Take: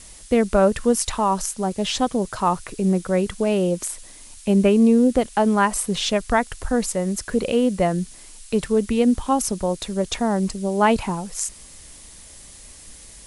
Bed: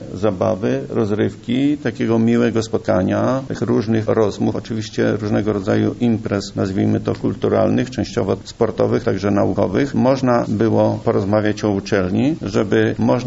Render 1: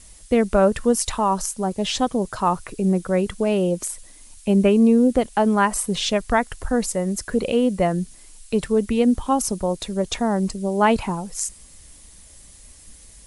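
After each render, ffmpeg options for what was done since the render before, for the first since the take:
-af "afftdn=nr=6:nf=-44"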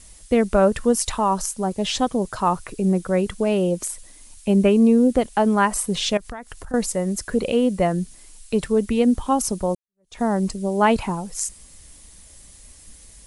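-filter_complex "[0:a]asettb=1/sr,asplit=3[a][b][c];[a]atrim=end=6.174[d];[b]atrim=start=6.17:end=6.74,asetpts=PTS-STARTPTS,afade=t=in:d=0.004:c=qsin,afade=t=out:st=0.566:d=0.004:c=qsin,acompressor=threshold=-32dB:ratio=5:attack=3.2:release=140:knee=1:detection=peak[e];[c]atrim=start=6.736[f];[d][e]acrossfade=d=0.004:c1=hsin:c2=qsin[g];[g][f]acrossfade=d=0.004:c1=qsin:c2=hsin,asplit=2[h][i];[h]atrim=end=9.75,asetpts=PTS-STARTPTS,afade=t=out:st=9.746:d=0.004:c=hsin[j];[i]atrim=start=9.75,asetpts=PTS-STARTPTS,afade=t=in:d=0.46:c=exp[k];[j][k]concat=n=2:v=0:a=1"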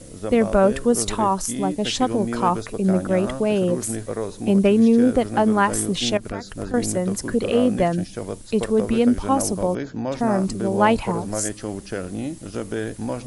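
-filter_complex "[1:a]volume=-12dB[a];[0:a][a]amix=inputs=2:normalize=0"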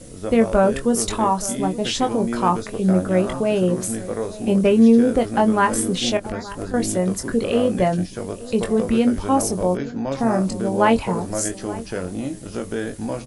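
-filter_complex "[0:a]asplit=2[a][b];[b]adelay=22,volume=-7dB[c];[a][c]amix=inputs=2:normalize=0,asplit=2[d][e];[e]adelay=874.6,volume=-17dB,highshelf=f=4k:g=-19.7[f];[d][f]amix=inputs=2:normalize=0"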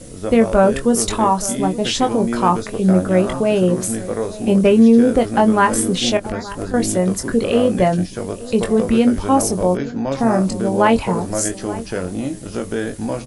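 -af "volume=3.5dB,alimiter=limit=-3dB:level=0:latency=1"

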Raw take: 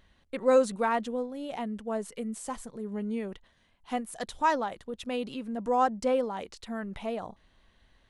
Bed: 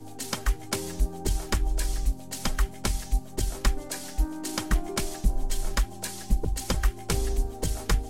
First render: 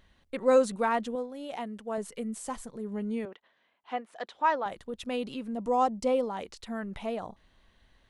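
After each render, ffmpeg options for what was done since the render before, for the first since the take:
-filter_complex "[0:a]asettb=1/sr,asplit=3[a][b][c];[a]atrim=end=1.154[d];[b]atrim=start=1.15:end=1.98,asetpts=PTS-STARTPTS,afade=t=in:d=0.004:c=qsin,afade=t=out:st=0.826:d=0.004:c=qsin,lowshelf=f=180:g=-11.5[e];[c]atrim=start=1.976[f];[d][e]acrossfade=d=0.004:c1=hsin:c2=qsin[g];[g][f]acrossfade=d=0.004:c1=qsin:c2=hsin,asettb=1/sr,asplit=3[h][i][j];[h]atrim=end=3.254[k];[i]atrim=start=3.25:end=4.66,asetpts=PTS-STARTPTS,afade=t=in:d=0.004:c=qsin,afade=t=out:st=1.406:d=0.004:c=qsin,highpass=400,lowpass=3k[l];[j]atrim=start=4.656[m];[k][l]acrossfade=d=0.004:c1=hsin:c2=qsin[n];[n][m]acrossfade=d=0.004:c1=qsin:c2=hsin,asettb=1/sr,asplit=3[o][p][q];[o]atrim=end=5.544[r];[p]atrim=start=5.54:end=6.27,asetpts=PTS-STARTPTS,afade=t=in:d=0.004:c=qsin,afade=t=out:st=0.726:d=0.004:c=qsin,equalizer=f=1.6k:w=4.7:g=-13.5[s];[q]atrim=start=6.266[t];[r][s]acrossfade=d=0.004:c1=hsin:c2=qsin[u];[u][t]acrossfade=d=0.004:c1=qsin:c2=hsin"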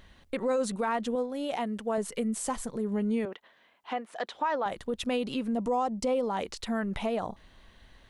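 -filter_complex "[0:a]asplit=2[a][b];[b]acompressor=threshold=-37dB:ratio=6,volume=3dB[c];[a][c]amix=inputs=2:normalize=0,alimiter=limit=-20.5dB:level=0:latency=1:release=63"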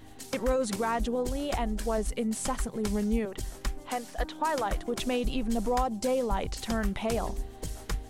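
-filter_complex "[1:a]volume=-8.5dB[a];[0:a][a]amix=inputs=2:normalize=0"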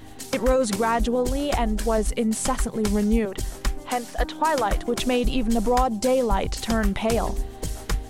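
-af "volume=7dB"

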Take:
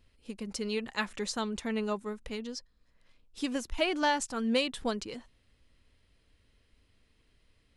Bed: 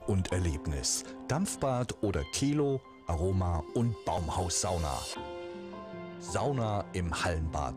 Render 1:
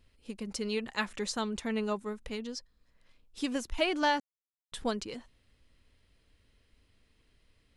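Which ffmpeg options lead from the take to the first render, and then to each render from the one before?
-filter_complex "[0:a]asplit=3[a][b][c];[a]atrim=end=4.2,asetpts=PTS-STARTPTS,afade=t=out:st=4.196:d=0.004:c=hsin[d];[b]atrim=start=4.2:end=4.72,asetpts=PTS-STARTPTS,volume=0[e];[c]atrim=start=4.72,asetpts=PTS-STARTPTS,afade=t=in:d=0.004:c=hsin[f];[d][e][f]concat=n=3:v=0:a=1"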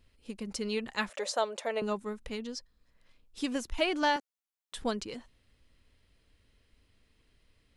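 -filter_complex "[0:a]asettb=1/sr,asplit=3[a][b][c];[a]atrim=end=1.094[d];[b]atrim=start=1.09:end=1.82,asetpts=PTS-STARTPTS,afade=t=in:d=0.004:c=qsin,afade=t=out:st=0.726:d=0.004:c=qsin,highpass=f=580:t=q:w=6.7[e];[c]atrim=start=1.816[f];[d][e]acrossfade=d=0.004:c1=hsin:c2=qsin[g];[g][f]acrossfade=d=0.004:c1=qsin:c2=hsin,asettb=1/sr,asplit=3[h][i][j];[h]atrim=end=4.164[k];[i]atrim=start=4.16:end=4.75,asetpts=PTS-STARTPTS,afade=t=in:d=0.004:c=qsin,afade=t=out:st=0.586:d=0.004:c=qsin,highpass=380[l];[j]atrim=start=4.746[m];[k][l]acrossfade=d=0.004:c1=hsin:c2=qsin[n];[n][m]acrossfade=d=0.004:c1=qsin:c2=hsin"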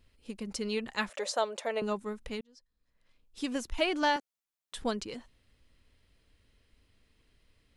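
-filter_complex "[0:a]asplit=2[a][b];[a]atrim=end=2.41,asetpts=PTS-STARTPTS,afade=t=out:st=2.406:d=0.004:c=hsin[c];[b]atrim=start=2.41,asetpts=PTS-STARTPTS,afade=t=in:d=1.22[d];[c][d]concat=n=2:v=0:a=1"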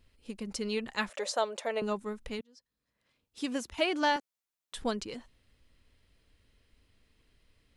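-filter_complex "[0:a]asettb=1/sr,asplit=3[a][b][c];[a]atrim=end=2.394[d];[b]atrim=start=2.39:end=4.12,asetpts=PTS-STARTPTS,afade=t=in:d=0.004:c=qsin,afade=t=out:st=1.726:d=0.004:c=qsin,highpass=88[e];[c]atrim=start=4.116[f];[d][e]acrossfade=d=0.004:c1=hsin:c2=qsin[g];[g][f]acrossfade=d=0.004:c1=qsin:c2=hsin"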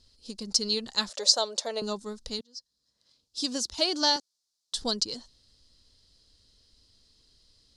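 -af "lowpass=7.2k,highshelf=f=3.3k:t=q:w=3:g=12"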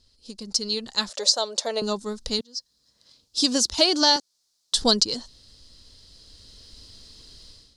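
-af "dynaudnorm=f=680:g=3:m=16dB,alimiter=limit=-6dB:level=0:latency=1:release=365"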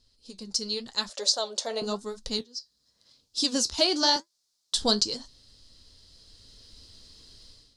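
-af "flanger=delay=6.9:depth=7.5:regen=-59:speed=0.92:shape=sinusoidal"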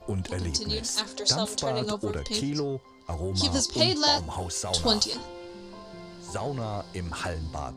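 -filter_complex "[1:a]volume=-1dB[a];[0:a][a]amix=inputs=2:normalize=0"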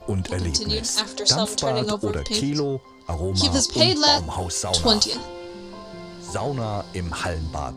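-af "volume=5.5dB"

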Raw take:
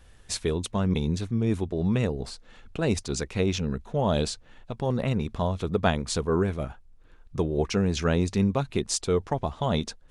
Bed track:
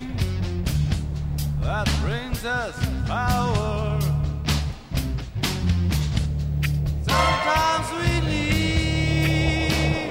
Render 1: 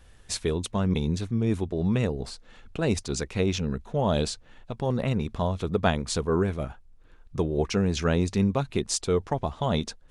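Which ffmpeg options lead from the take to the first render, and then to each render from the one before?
-af anull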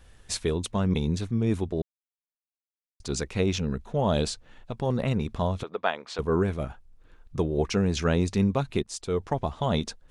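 -filter_complex "[0:a]asettb=1/sr,asplit=3[a][b][c];[a]atrim=end=5.634[d];[b]atrim=start=5.63:end=6.19,asetpts=PTS-STARTPTS,afade=t=in:d=0.004:c=qsin,afade=t=out:st=0.556:d=0.004:c=qsin,highpass=580,lowpass=3.2k[e];[c]atrim=start=6.186[f];[d][e]acrossfade=d=0.004:c1=hsin:c2=qsin[g];[g][f]acrossfade=d=0.004:c1=qsin:c2=hsin,asplit=4[h][i][j][k];[h]atrim=end=1.82,asetpts=PTS-STARTPTS,afade=t=out:st=1.816:d=0.004:c=hsin[l];[i]atrim=start=1.82:end=3,asetpts=PTS-STARTPTS,volume=0[m];[j]atrim=start=3:end=8.83,asetpts=PTS-STARTPTS,afade=t=in:d=0.004:c=hsin,afade=t=out:st=5.826:d=0.004:c=hsin:silence=0.158489[n];[k]atrim=start=8.83,asetpts=PTS-STARTPTS,afade=t=in:d=0.49:silence=0.158489[o];[l][m][n][o]concat=n=4:v=0:a=1"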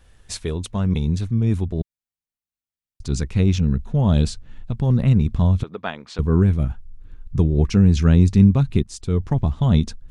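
-af "asubboost=boost=6:cutoff=220"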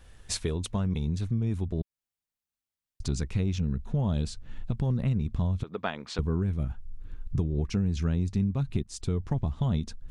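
-af "acompressor=threshold=-26dB:ratio=4"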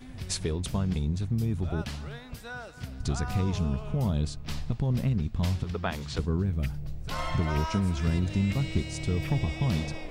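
-filter_complex "[1:a]volume=-14.5dB[a];[0:a][a]amix=inputs=2:normalize=0"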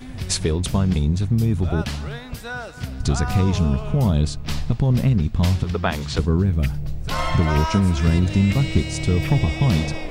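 -af "volume=9dB"

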